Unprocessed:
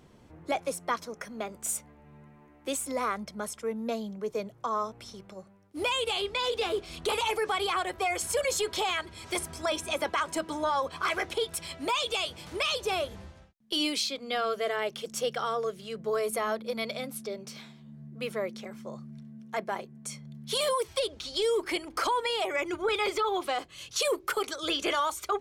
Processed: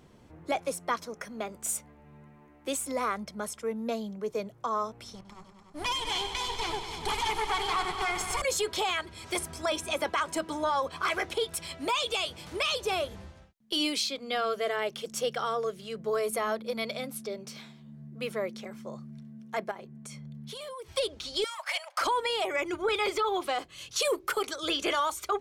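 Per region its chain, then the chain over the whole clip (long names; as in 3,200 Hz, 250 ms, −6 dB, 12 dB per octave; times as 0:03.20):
0:05.15–0:08.42: lower of the sound and its delayed copy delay 0.92 ms + low-pass filter 11,000 Hz + echo machine with several playback heads 98 ms, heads all three, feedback 58%, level −13 dB
0:19.71–0:20.93: bass and treble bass +3 dB, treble −4 dB + downward compressor, threshold −39 dBFS
0:21.44–0:22.01: high-shelf EQ 12,000 Hz −8.5 dB + leveller curve on the samples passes 1 + linear-phase brick-wall high-pass 530 Hz
whole clip: no processing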